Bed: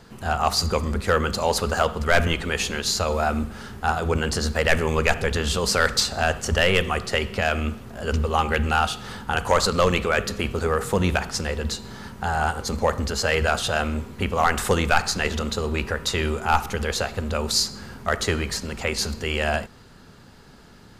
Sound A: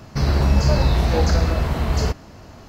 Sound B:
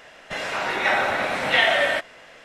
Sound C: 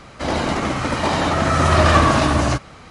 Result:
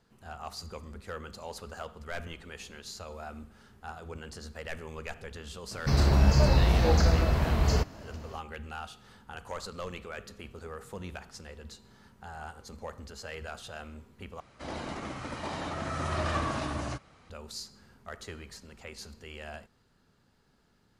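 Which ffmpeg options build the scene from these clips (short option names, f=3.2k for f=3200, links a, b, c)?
-filter_complex "[0:a]volume=-19.5dB,asplit=2[a][b];[a]atrim=end=14.404[c];[3:a]atrim=end=2.9,asetpts=PTS-STARTPTS,volume=-17dB[d];[b]atrim=start=17.296[e];[1:a]atrim=end=2.68,asetpts=PTS-STARTPTS,volume=-5dB,afade=t=in:d=0.004:c=hsin,afade=t=out:st=2.676:d=0.004:c=hsin,adelay=5710[f];[c][d]acrossfade=d=0.004:c1=hsin:c2=hsin[g];[g][e]acrossfade=d=0.004:c1=hsin:c2=hsin[h];[h][f]amix=inputs=2:normalize=0"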